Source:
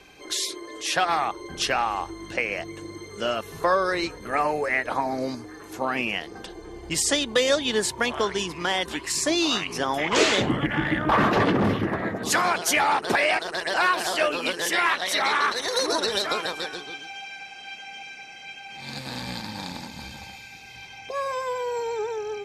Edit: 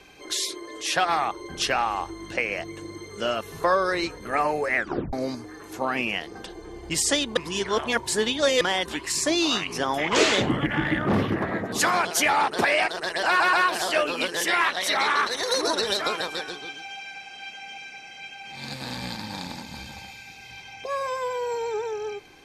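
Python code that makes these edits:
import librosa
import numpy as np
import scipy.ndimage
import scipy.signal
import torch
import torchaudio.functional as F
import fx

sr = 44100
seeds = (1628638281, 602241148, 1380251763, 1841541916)

y = fx.edit(x, sr, fx.tape_stop(start_s=4.76, length_s=0.37),
    fx.reverse_span(start_s=7.37, length_s=1.24),
    fx.cut(start_s=11.07, length_s=0.51),
    fx.stutter(start_s=13.78, slice_s=0.13, count=3), tone=tone)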